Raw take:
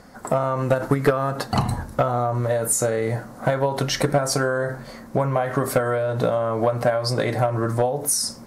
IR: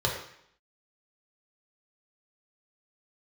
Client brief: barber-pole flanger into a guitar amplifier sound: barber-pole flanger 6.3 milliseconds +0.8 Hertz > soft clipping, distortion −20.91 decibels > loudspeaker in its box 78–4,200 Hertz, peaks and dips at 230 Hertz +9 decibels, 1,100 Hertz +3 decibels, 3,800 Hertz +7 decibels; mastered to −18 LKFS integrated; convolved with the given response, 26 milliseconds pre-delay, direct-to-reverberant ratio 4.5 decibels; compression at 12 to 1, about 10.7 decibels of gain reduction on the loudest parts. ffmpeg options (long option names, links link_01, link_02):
-filter_complex "[0:a]acompressor=threshold=-25dB:ratio=12,asplit=2[link_01][link_02];[1:a]atrim=start_sample=2205,adelay=26[link_03];[link_02][link_03]afir=irnorm=-1:irlink=0,volume=-15dB[link_04];[link_01][link_04]amix=inputs=2:normalize=0,asplit=2[link_05][link_06];[link_06]adelay=6.3,afreqshift=0.8[link_07];[link_05][link_07]amix=inputs=2:normalize=1,asoftclip=threshold=-17.5dB,highpass=78,equalizer=frequency=230:width_type=q:width=4:gain=9,equalizer=frequency=1100:width_type=q:width=4:gain=3,equalizer=frequency=3800:width_type=q:width=4:gain=7,lowpass=frequency=4200:width=0.5412,lowpass=frequency=4200:width=1.3066,volume=12dB"